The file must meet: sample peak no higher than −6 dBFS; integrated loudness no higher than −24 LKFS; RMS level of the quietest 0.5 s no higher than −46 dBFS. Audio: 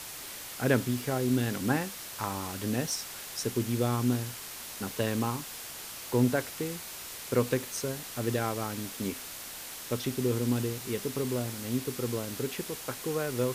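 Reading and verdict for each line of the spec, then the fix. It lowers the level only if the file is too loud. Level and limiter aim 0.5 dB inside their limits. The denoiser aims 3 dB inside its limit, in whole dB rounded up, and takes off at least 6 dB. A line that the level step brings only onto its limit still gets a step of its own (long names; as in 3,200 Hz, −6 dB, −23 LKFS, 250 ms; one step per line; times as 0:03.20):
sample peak −12.5 dBFS: in spec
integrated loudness −32.0 LKFS: in spec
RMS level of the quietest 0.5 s −42 dBFS: out of spec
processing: broadband denoise 7 dB, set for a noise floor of −42 dBFS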